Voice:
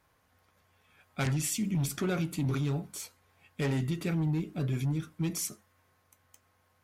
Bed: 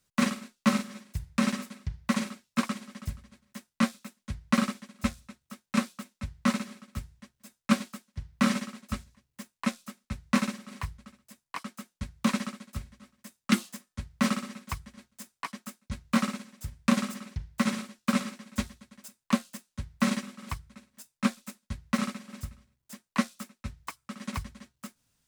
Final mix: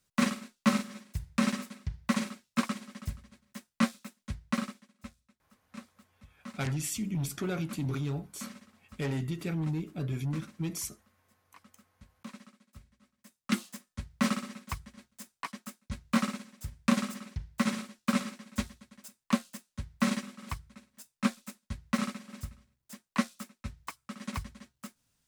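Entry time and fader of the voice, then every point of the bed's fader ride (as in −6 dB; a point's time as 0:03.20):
5.40 s, −2.5 dB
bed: 0:04.32 −1.5 dB
0:05.14 −19.5 dB
0:12.50 −19.5 dB
0:13.77 −2 dB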